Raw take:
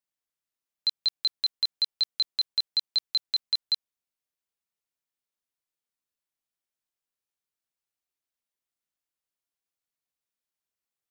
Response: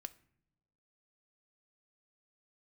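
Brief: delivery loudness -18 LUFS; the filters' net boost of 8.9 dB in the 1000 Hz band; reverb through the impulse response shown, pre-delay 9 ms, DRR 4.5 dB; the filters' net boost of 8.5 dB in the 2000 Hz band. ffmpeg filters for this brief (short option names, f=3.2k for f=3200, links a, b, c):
-filter_complex "[0:a]equalizer=f=1k:t=o:g=8.5,equalizer=f=2k:t=o:g=8.5,asplit=2[a][b];[1:a]atrim=start_sample=2205,adelay=9[c];[b][c]afir=irnorm=-1:irlink=0,volume=0dB[d];[a][d]amix=inputs=2:normalize=0,volume=6dB"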